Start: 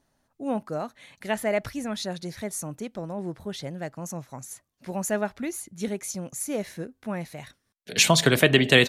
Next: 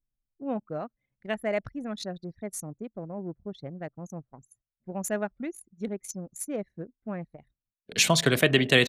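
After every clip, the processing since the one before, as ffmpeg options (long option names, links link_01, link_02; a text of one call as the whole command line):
ffmpeg -i in.wav -af "bandreject=frequency=890:width=12,anlmdn=15.8,volume=-3dB" out.wav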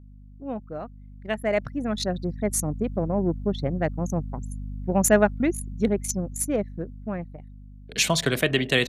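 ffmpeg -i in.wav -af "aeval=exprs='val(0)+0.00631*(sin(2*PI*50*n/s)+sin(2*PI*2*50*n/s)/2+sin(2*PI*3*50*n/s)/3+sin(2*PI*4*50*n/s)/4+sin(2*PI*5*50*n/s)/5)':channel_layout=same,dynaudnorm=framelen=300:gausssize=13:maxgain=14.5dB,volume=-1.5dB" out.wav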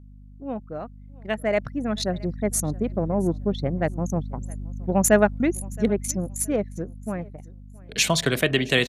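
ffmpeg -i in.wav -af "aecho=1:1:670|1340:0.0668|0.016,aresample=32000,aresample=44100,volume=1dB" out.wav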